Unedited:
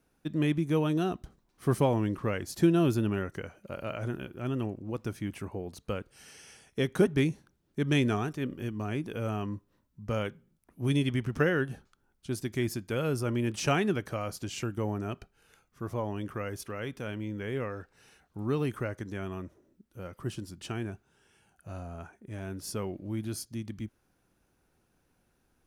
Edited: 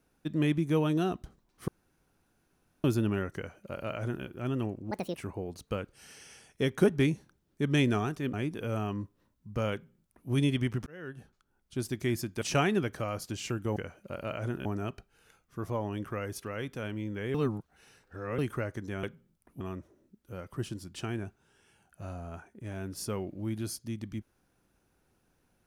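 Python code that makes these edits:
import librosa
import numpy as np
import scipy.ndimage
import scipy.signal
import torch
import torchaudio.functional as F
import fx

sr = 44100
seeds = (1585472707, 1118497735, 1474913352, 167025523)

y = fx.edit(x, sr, fx.room_tone_fill(start_s=1.68, length_s=1.16),
    fx.duplicate(start_s=3.36, length_s=0.89, to_s=14.89),
    fx.speed_span(start_s=4.91, length_s=0.42, speed=1.72),
    fx.cut(start_s=8.51, length_s=0.35),
    fx.duplicate(start_s=10.25, length_s=0.57, to_s=19.27),
    fx.fade_in_span(start_s=11.39, length_s=0.91),
    fx.cut(start_s=12.94, length_s=0.6),
    fx.reverse_span(start_s=17.58, length_s=1.04), tone=tone)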